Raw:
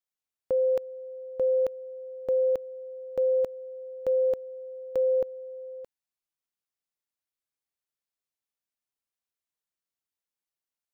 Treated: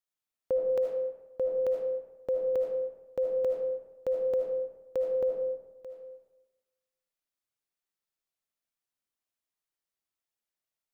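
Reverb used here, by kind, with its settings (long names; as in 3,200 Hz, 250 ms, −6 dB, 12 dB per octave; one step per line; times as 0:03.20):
comb and all-pass reverb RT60 1.1 s, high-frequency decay 0.55×, pre-delay 35 ms, DRR 1 dB
level −2 dB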